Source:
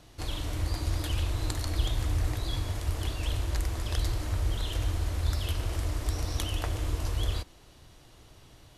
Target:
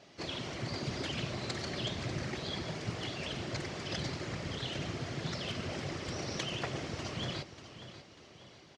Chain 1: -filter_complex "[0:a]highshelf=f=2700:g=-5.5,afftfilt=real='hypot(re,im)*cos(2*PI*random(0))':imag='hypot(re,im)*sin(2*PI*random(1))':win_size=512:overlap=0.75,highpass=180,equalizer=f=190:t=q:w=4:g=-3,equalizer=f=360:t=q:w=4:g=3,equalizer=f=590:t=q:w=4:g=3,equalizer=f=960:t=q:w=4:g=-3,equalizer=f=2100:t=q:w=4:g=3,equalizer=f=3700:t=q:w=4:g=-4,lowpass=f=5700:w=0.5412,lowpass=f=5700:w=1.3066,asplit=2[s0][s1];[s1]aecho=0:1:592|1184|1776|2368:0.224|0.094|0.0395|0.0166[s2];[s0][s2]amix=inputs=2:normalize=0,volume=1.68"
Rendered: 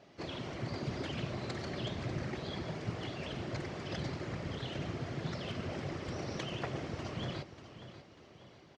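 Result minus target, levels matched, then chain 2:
4 kHz band -4.5 dB
-filter_complex "[0:a]highshelf=f=2700:g=4.5,afftfilt=real='hypot(re,im)*cos(2*PI*random(0))':imag='hypot(re,im)*sin(2*PI*random(1))':win_size=512:overlap=0.75,highpass=180,equalizer=f=190:t=q:w=4:g=-3,equalizer=f=360:t=q:w=4:g=3,equalizer=f=590:t=q:w=4:g=3,equalizer=f=960:t=q:w=4:g=-3,equalizer=f=2100:t=q:w=4:g=3,equalizer=f=3700:t=q:w=4:g=-4,lowpass=f=5700:w=0.5412,lowpass=f=5700:w=1.3066,asplit=2[s0][s1];[s1]aecho=0:1:592|1184|1776|2368:0.224|0.094|0.0395|0.0166[s2];[s0][s2]amix=inputs=2:normalize=0,volume=1.68"

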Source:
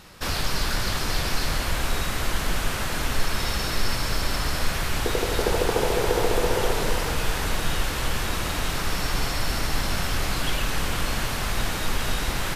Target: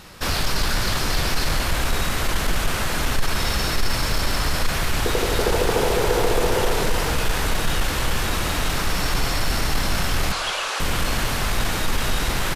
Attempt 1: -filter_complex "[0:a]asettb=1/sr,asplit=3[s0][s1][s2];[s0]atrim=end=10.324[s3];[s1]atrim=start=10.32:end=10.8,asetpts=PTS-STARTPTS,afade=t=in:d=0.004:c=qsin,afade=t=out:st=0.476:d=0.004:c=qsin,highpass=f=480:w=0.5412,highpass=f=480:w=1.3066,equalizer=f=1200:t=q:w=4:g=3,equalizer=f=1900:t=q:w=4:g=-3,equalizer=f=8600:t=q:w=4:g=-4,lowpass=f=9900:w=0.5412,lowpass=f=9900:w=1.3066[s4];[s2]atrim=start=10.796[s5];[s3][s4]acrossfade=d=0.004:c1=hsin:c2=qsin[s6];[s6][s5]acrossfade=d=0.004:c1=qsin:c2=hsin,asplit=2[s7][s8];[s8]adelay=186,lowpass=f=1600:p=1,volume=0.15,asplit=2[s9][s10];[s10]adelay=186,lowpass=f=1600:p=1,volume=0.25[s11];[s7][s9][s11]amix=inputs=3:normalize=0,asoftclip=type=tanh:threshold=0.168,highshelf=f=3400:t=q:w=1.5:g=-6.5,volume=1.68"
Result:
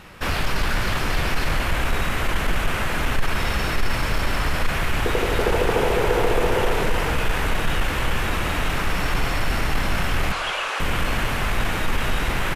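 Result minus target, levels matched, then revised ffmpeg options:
8 kHz band -7.0 dB
-filter_complex "[0:a]asettb=1/sr,asplit=3[s0][s1][s2];[s0]atrim=end=10.324[s3];[s1]atrim=start=10.32:end=10.8,asetpts=PTS-STARTPTS,afade=t=in:d=0.004:c=qsin,afade=t=out:st=0.476:d=0.004:c=qsin,highpass=f=480:w=0.5412,highpass=f=480:w=1.3066,equalizer=f=1200:t=q:w=4:g=3,equalizer=f=1900:t=q:w=4:g=-3,equalizer=f=8600:t=q:w=4:g=-4,lowpass=f=9900:w=0.5412,lowpass=f=9900:w=1.3066[s4];[s2]atrim=start=10.796[s5];[s3][s4]acrossfade=d=0.004:c1=hsin:c2=qsin[s6];[s6][s5]acrossfade=d=0.004:c1=qsin:c2=hsin,asplit=2[s7][s8];[s8]adelay=186,lowpass=f=1600:p=1,volume=0.15,asplit=2[s9][s10];[s10]adelay=186,lowpass=f=1600:p=1,volume=0.25[s11];[s7][s9][s11]amix=inputs=3:normalize=0,asoftclip=type=tanh:threshold=0.168,volume=1.68"

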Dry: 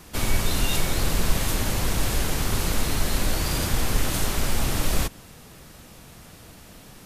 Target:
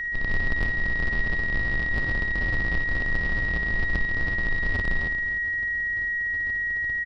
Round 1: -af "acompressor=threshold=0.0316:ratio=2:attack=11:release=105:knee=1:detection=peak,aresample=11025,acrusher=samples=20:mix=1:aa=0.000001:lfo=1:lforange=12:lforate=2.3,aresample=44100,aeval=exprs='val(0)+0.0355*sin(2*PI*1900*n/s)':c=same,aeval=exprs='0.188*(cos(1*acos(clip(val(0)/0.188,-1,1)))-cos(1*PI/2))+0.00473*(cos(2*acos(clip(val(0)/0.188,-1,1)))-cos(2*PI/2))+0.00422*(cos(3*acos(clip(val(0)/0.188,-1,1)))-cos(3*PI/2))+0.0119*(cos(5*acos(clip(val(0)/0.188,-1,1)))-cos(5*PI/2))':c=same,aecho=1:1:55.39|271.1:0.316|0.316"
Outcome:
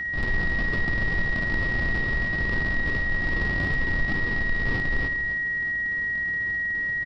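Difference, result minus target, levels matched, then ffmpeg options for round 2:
decimation with a swept rate: distortion -5 dB
-af "acompressor=threshold=0.0316:ratio=2:attack=11:release=105:knee=1:detection=peak,aresample=11025,acrusher=samples=74:mix=1:aa=0.000001:lfo=1:lforange=44.4:lforate=2.3,aresample=44100,aeval=exprs='val(0)+0.0355*sin(2*PI*1900*n/s)':c=same,aeval=exprs='0.188*(cos(1*acos(clip(val(0)/0.188,-1,1)))-cos(1*PI/2))+0.00473*(cos(2*acos(clip(val(0)/0.188,-1,1)))-cos(2*PI/2))+0.00422*(cos(3*acos(clip(val(0)/0.188,-1,1)))-cos(3*PI/2))+0.0119*(cos(5*acos(clip(val(0)/0.188,-1,1)))-cos(5*PI/2))':c=same,aecho=1:1:55.39|271.1:0.316|0.316"

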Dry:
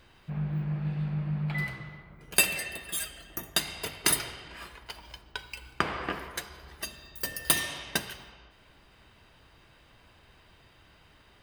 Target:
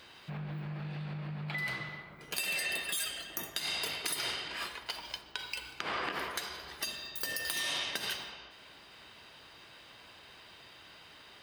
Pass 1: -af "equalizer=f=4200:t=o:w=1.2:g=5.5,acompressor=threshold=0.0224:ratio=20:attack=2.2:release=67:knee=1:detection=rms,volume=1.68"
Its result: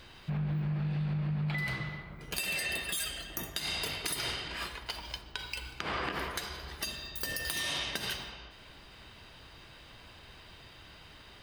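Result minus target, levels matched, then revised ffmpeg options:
250 Hz band +5.5 dB
-af "equalizer=f=4200:t=o:w=1.2:g=5.5,acompressor=threshold=0.0224:ratio=20:attack=2.2:release=67:knee=1:detection=rms,highpass=f=340:p=1,volume=1.68"

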